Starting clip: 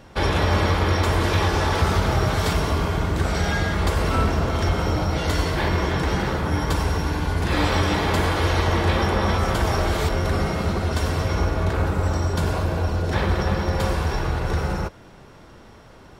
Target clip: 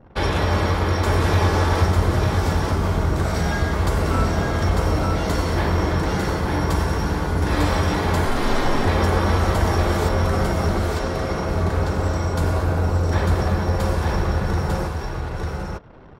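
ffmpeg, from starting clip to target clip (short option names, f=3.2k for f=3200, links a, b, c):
-filter_complex "[0:a]asettb=1/sr,asplit=3[a][b][c];[a]atrim=end=1.854[d];[b]atrim=start=1.85:end=2.83,asetpts=PTS-STARTPTS,afade=t=in:d=0.004:c=qsin,afade=t=out:st=0.976:d=0.004:c=qsin,acrossover=split=420[e][f];[f]acompressor=threshold=-32dB:ratio=2[g];[e][g]amix=inputs=2:normalize=0[h];[c]atrim=start=2.826[i];[d][h]acrossfade=d=0.004:c1=hsin:c2=qsin[j];[j][i]acrossfade=d=0.004:c1=qsin:c2=hsin,asettb=1/sr,asplit=3[k][l][m];[k]atrim=end=10.914[n];[l]atrim=start=10.91:end=11.49,asetpts=PTS-STARTPTS,afade=t=in:d=0.004:c=qsin,afade=t=out:st=0.576:d=0.004:c=qsin,highpass=170,lowpass=6.1k[o];[m]atrim=start=11.486[p];[n][o]acrossfade=d=0.004:c1=hsin:c2=qsin[q];[q][p]acrossfade=d=0.004:c1=qsin:c2=hsin,aecho=1:1:898:0.668,asettb=1/sr,asplit=3[r][s][t];[r]atrim=end=8.254[u];[s]atrim=start=8.25:end=8.87,asetpts=PTS-STARTPTS,afade=t=in:d=0.004:c=qsin,afade=t=out:st=0.616:d=0.004:c=qsin,afreqshift=-73[v];[t]atrim=start=8.866[w];[u][v]acrossfade=d=0.004:c1=hsin:c2=qsin[x];[x][w]acrossfade=d=0.004:c1=qsin:c2=hsin,anlmdn=0.0398,adynamicequalizer=threshold=0.00794:dfrequency=3000:dqfactor=1.1:tfrequency=3000:tqfactor=1.1:attack=5:release=100:ratio=0.375:range=2.5:mode=cutabove:tftype=bell"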